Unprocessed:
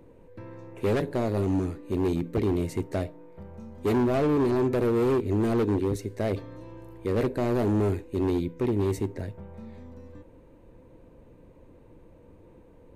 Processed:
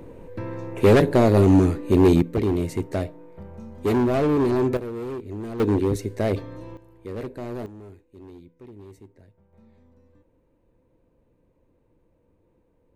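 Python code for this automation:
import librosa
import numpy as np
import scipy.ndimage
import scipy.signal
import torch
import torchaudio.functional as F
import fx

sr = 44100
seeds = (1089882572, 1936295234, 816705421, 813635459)

y = fx.gain(x, sr, db=fx.steps((0.0, 10.5), (2.22, 3.0), (4.77, -8.0), (5.6, 4.5), (6.77, -7.0), (7.66, -18.5), (9.53, -12.0)))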